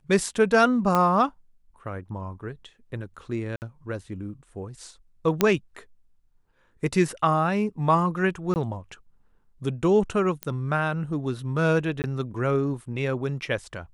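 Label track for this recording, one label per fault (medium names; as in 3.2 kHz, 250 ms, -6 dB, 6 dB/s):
0.950000	0.950000	pop -9 dBFS
3.560000	3.620000	dropout 59 ms
5.410000	5.410000	pop -5 dBFS
8.540000	8.560000	dropout 19 ms
10.430000	10.430000	pop -13 dBFS
12.020000	12.040000	dropout 19 ms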